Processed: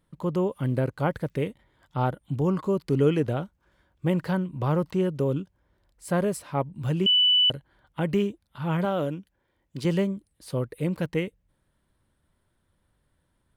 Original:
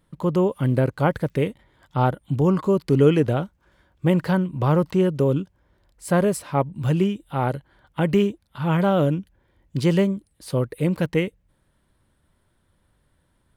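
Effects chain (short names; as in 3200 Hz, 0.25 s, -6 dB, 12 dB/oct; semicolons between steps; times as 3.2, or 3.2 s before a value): 7.06–7.5 bleep 2980 Hz -11 dBFS; 8.85–9.85 low shelf 170 Hz -10.5 dB; gain -5.5 dB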